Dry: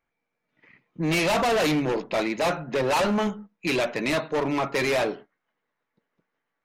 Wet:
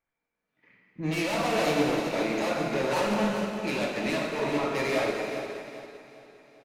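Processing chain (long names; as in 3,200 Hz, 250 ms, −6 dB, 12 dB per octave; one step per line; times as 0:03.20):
brickwall limiter −26.5 dBFS, peak gain reduction 9 dB
repeating echo 400 ms, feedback 52%, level −9 dB
dense smooth reverb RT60 3 s, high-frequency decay 0.95×, DRR −2 dB
expander for the loud parts 1.5 to 1, over −42 dBFS
level +2.5 dB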